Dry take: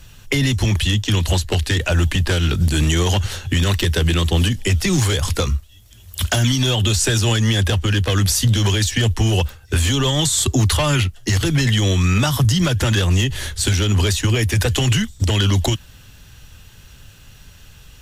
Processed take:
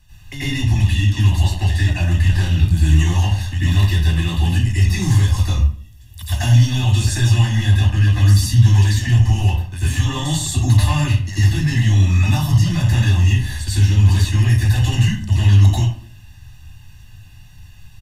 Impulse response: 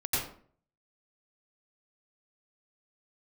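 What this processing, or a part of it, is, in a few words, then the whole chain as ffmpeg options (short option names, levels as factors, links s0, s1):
microphone above a desk: -filter_complex "[0:a]aecho=1:1:1.1:0.84[s0];[1:a]atrim=start_sample=2205[s1];[s0][s1]afir=irnorm=-1:irlink=0,volume=0.2"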